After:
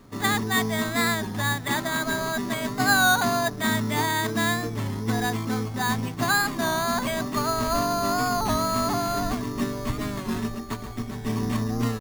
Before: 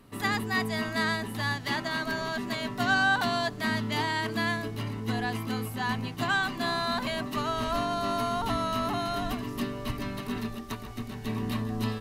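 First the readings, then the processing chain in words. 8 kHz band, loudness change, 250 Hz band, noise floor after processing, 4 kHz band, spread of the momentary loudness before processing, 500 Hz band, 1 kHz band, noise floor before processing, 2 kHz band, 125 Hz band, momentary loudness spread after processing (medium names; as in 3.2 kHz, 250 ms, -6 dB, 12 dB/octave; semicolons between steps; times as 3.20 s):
+13.5 dB, +4.5 dB, +5.0 dB, -35 dBFS, +4.0 dB, 8 LU, +4.5 dB, +4.5 dB, -40 dBFS, +3.5 dB, +5.0 dB, 7 LU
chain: careless resampling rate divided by 8×, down filtered, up hold; warped record 33 1/3 rpm, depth 100 cents; trim +5 dB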